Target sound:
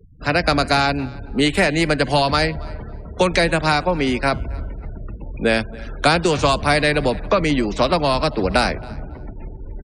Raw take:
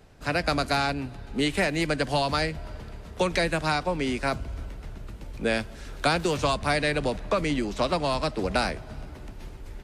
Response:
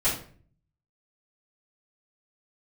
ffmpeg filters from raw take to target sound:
-filter_complex "[0:a]afftfilt=real='re*gte(hypot(re,im),0.00708)':imag='im*gte(hypot(re,im),0.00708)':win_size=1024:overlap=0.75,asplit=2[s0][s1];[s1]adelay=276,lowpass=f=4800:p=1,volume=0.075,asplit=2[s2][s3];[s3]adelay=276,lowpass=f=4800:p=1,volume=0.18[s4];[s0][s2][s4]amix=inputs=3:normalize=0,volume=2.51"

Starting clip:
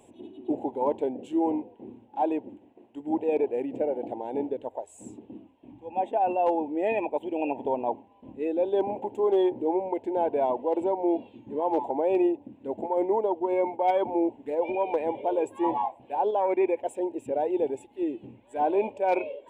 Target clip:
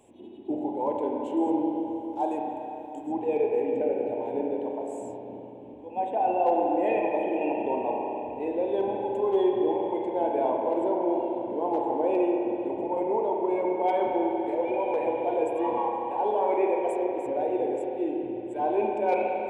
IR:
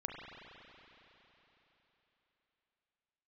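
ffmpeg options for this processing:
-filter_complex "[0:a]asettb=1/sr,asplit=3[s0][s1][s2];[s0]atrim=end=1.374[s3];[s1]atrim=start=1.37:end=3.12,asetpts=PTS-STARTPTS,afade=t=in:d=0.004:c=qsin,afade=t=out:st=1.746:d=0.004:c=qsin,highshelf=f=4100:t=q:w=1.5:g=12[s4];[s2]atrim=start=3.116[s5];[s3][s4]acrossfade=d=0.004:c1=hsin:c2=qsin[s6];[s6][s5]acrossfade=d=0.004:c1=qsin:c2=hsin[s7];[1:a]atrim=start_sample=2205[s8];[s7][s8]afir=irnorm=-1:irlink=0"

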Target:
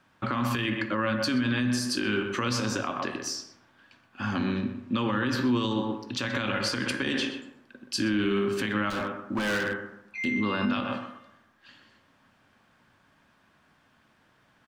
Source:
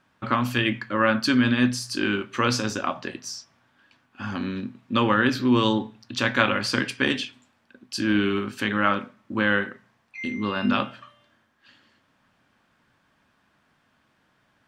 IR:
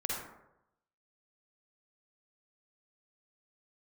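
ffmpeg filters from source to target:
-filter_complex "[0:a]asettb=1/sr,asplit=3[s0][s1][s2];[s0]atrim=end=4.434[s3];[s1]atrim=start=4.43:end=5.33,asetpts=PTS-STARTPTS,afade=t=in:d=0.004:c=qsin,afade=t=out:st=0.896:d=0.004:c=qsin,highshelf=f=11000:g=-6[s4];[s2]atrim=start=5.326[s5];[s3][s4]acrossfade=d=0.004:c1=hsin:c2=qsin[s6];[s6][s5]acrossfade=d=0.004:c1=qsin:c2=hsin,asplit=2[s7][s8];[s8]adelay=125,lowpass=f=1800:p=1,volume=0.398,asplit=2[s9][s10];[s10]adelay=125,lowpass=f=1800:p=1,volume=0.25,asplit=2[s11][s12];[s12]adelay=125,lowpass=f=1800:p=1,volume=0.25[s13];[s7][s9][s11][s13]amix=inputs=4:normalize=0,asplit=2[s14][s15];[1:a]atrim=start_sample=2205[s16];[s15][s16]afir=irnorm=-1:irlink=0,volume=0.211[s17];[s14][s17]amix=inputs=2:normalize=0,asettb=1/sr,asplit=3[s18][s19][s20];[s18]atrim=end=8.904[s21];[s19]atrim=start=8.9:end=10.25,asetpts=PTS-STARTPTS,afade=t=in:d=0.004:c=qsin,afade=t=out:st=1.346:d=0.004:c=qsin,asoftclip=type=hard:threshold=0.0631[s22];[s20]atrim=start=10.246[s23];[s21][s22]acrossfade=d=0.004:c1=hsin:c2=qsin[s24];[s24][s23]acrossfade=d=0.004:c1=qsin:c2=hsin,acrossover=split=290|3000[s25][s26][s27];[s26]acompressor=threshold=0.0794:ratio=6[s28];[s25][s28][s27]amix=inputs=3:normalize=0,alimiter=limit=0.126:level=0:latency=1:release=101"

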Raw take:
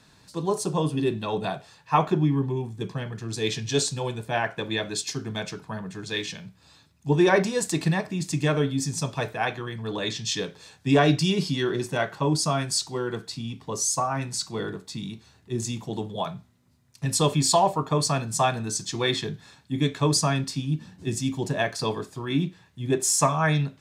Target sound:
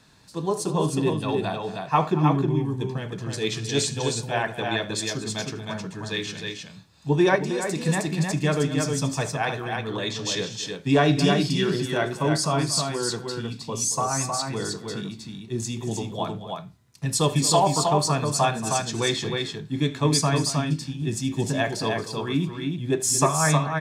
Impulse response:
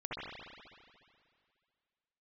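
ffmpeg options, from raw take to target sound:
-filter_complex "[0:a]aecho=1:1:77|228|313:0.119|0.178|0.631,asplit=3[s0][s1][s2];[s0]afade=t=out:st=7.35:d=0.02[s3];[s1]acompressor=threshold=0.0708:ratio=6,afade=t=in:st=7.35:d=0.02,afade=t=out:st=7.87:d=0.02[s4];[s2]afade=t=in:st=7.87:d=0.02[s5];[s3][s4][s5]amix=inputs=3:normalize=0"

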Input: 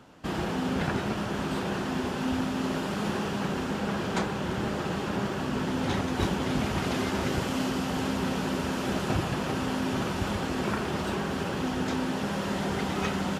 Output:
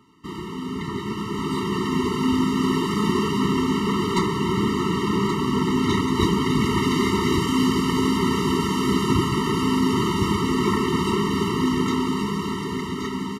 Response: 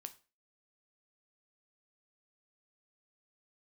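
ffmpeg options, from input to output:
-filter_complex "[0:a]lowshelf=f=96:g=-9.5,asettb=1/sr,asplit=3[s0][s1][s2];[s0]atrim=end=3.784[s3];[s1]atrim=start=3.78:end=4.26,asetpts=PTS-STARTPTS,afade=t=in:d=0.004:c=qsin,afade=t=out:st=0.476:d=0.004:c=qsin,aeval=exprs='clip(val(0),-1,0.0631)':c=same[s4];[s2]atrim=start=4.256[s5];[s3][s4]acrossfade=d=0.004:c1=hsin:c2=qsin[s6];[s6][s5]acrossfade=d=0.004:c1=qsin:c2=hsin,dynaudnorm=f=160:g=17:m=3.16,aecho=1:1:1124:0.398,afftfilt=real='re*eq(mod(floor(b*sr/1024/450),2),0)':imag='im*eq(mod(floor(b*sr/1024/450),2),0)':win_size=1024:overlap=0.75"

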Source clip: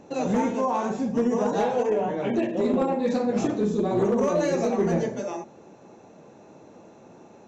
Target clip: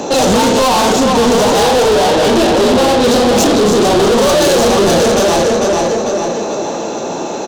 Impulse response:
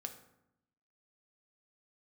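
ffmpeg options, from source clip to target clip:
-filter_complex "[0:a]acrossover=split=120[s0][s1];[s1]aecho=1:1:446|892|1338|1784|2230:0.398|0.171|0.0736|0.0317|0.0136[s2];[s0][s2]amix=inputs=2:normalize=0,asplit=2[s3][s4];[s4]highpass=f=720:p=1,volume=63.1,asoftclip=type=tanh:threshold=0.376[s5];[s3][s5]amix=inputs=2:normalize=0,lowpass=f=1000:p=1,volume=0.501,aexciter=amount=6:drive=4.5:freq=3100,volume=1.88"

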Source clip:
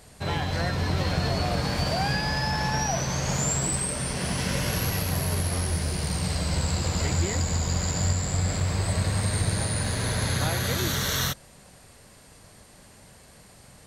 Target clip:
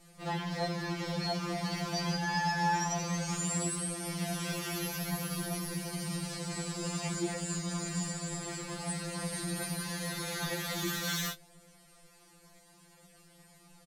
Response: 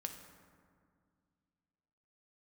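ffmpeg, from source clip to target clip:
-filter_complex "[0:a]flanger=delay=5:depth=3.6:regen=-37:speed=0.53:shape=triangular,asplit=2[s0][s1];[s1]adelay=20,volume=0.282[s2];[s0][s2]amix=inputs=2:normalize=0,asplit=2[s3][s4];[s4]asetrate=55563,aresample=44100,atempo=0.793701,volume=0.447[s5];[s3][s5]amix=inputs=2:normalize=0,afftfilt=real='re*2.83*eq(mod(b,8),0)':imag='im*2.83*eq(mod(b,8),0)':win_size=2048:overlap=0.75,volume=0.75"

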